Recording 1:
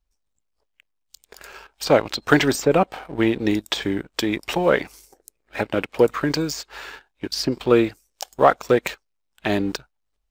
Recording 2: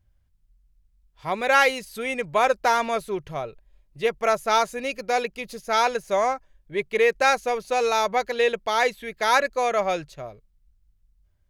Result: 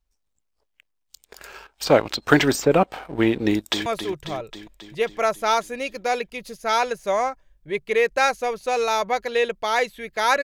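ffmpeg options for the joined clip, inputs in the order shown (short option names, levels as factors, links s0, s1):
-filter_complex "[0:a]apad=whole_dur=10.43,atrim=end=10.43,atrim=end=3.862[s0];[1:a]atrim=start=2.898:end=9.47[s1];[s0][s1]acrossfade=d=0.004:c1=hsin:c2=hsin,asplit=2[s2][s3];[s3]afade=t=in:st=3.46:d=0.01,afade=t=out:st=3.86:d=0.01,aecho=0:1:270|540|810|1080|1350|1620|1890|2160|2430:0.316228|0.205548|0.133606|0.0868441|0.0564486|0.0366916|0.0238495|0.0155022|0.0100764[s4];[s2][s4]amix=inputs=2:normalize=0"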